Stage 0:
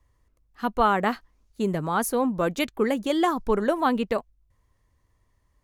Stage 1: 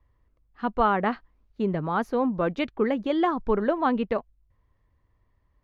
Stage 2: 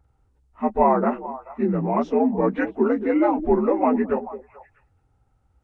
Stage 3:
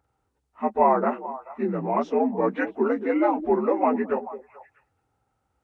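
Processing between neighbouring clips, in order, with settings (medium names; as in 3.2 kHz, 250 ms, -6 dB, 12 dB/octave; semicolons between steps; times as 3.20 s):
distance through air 270 m
frequency axis rescaled in octaves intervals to 83%; repeats whose band climbs or falls 217 ms, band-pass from 340 Hz, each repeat 1.4 oct, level -11 dB; trim +6 dB
high-pass 350 Hz 6 dB/octave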